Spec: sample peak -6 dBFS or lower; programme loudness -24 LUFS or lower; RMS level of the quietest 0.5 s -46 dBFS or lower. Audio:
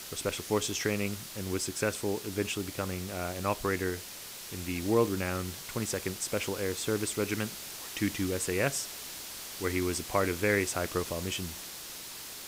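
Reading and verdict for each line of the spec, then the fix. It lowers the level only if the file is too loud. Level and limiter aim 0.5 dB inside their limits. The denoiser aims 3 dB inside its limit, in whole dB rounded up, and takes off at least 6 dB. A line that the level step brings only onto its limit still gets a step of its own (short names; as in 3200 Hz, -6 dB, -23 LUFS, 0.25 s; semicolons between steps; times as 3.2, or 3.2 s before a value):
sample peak -12.5 dBFS: OK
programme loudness -32.5 LUFS: OK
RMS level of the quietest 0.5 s -44 dBFS: fail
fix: denoiser 6 dB, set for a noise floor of -44 dBFS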